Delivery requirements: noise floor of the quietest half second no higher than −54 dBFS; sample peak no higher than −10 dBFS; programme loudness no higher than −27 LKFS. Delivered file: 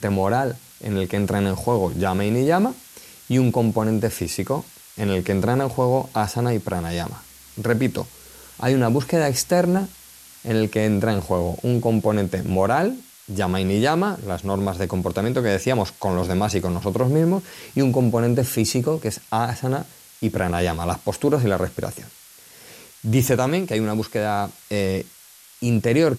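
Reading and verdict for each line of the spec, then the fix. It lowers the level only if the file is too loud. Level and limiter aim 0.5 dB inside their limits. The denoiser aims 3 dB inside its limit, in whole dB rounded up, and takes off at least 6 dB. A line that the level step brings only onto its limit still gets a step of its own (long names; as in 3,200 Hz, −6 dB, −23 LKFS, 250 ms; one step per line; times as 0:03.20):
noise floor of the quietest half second −48 dBFS: out of spec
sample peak −6.0 dBFS: out of spec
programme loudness −22.0 LKFS: out of spec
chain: broadband denoise 6 dB, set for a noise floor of −48 dBFS
level −5.5 dB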